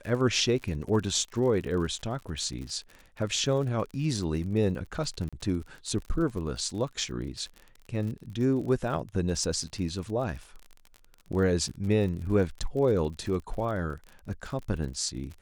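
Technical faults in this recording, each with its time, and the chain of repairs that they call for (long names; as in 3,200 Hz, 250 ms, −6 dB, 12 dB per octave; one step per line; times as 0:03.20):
surface crackle 46 per second −36 dBFS
0:05.29–0:05.33: drop-out 36 ms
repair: click removal
repair the gap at 0:05.29, 36 ms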